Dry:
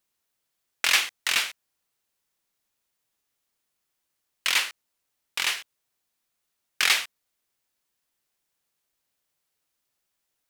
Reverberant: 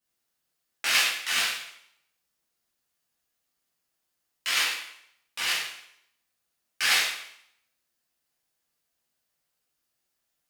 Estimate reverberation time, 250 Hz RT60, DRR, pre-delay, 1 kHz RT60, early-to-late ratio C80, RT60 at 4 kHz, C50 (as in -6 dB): 0.75 s, 0.70 s, -9.5 dB, 5 ms, 0.75 s, 5.5 dB, 0.65 s, 2.0 dB